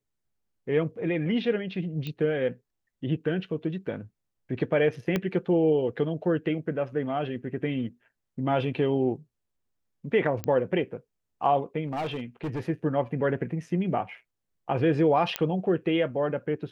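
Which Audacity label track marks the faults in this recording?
2.070000	2.070000	click −22 dBFS
5.160000	5.160000	click −13 dBFS
10.440000	10.440000	click −15 dBFS
11.860000	12.610000	clipping −27 dBFS
15.360000	15.360000	click −9 dBFS

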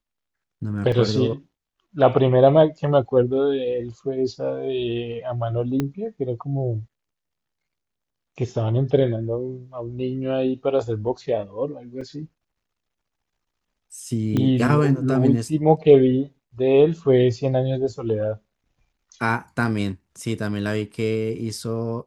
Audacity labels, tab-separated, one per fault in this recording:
0.920000	0.920000	drop-out 2.9 ms
5.800000	5.800000	click −11 dBFS
12.010000	12.010000	drop-out 4.5 ms
14.370000	14.370000	click −12 dBFS

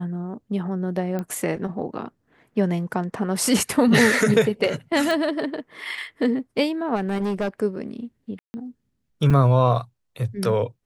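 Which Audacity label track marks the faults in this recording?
1.190000	1.190000	click −17 dBFS
5.110000	5.110000	click
6.950000	7.490000	clipping −20.5 dBFS
8.390000	8.540000	drop-out 150 ms
9.300000	9.300000	drop-out 5 ms

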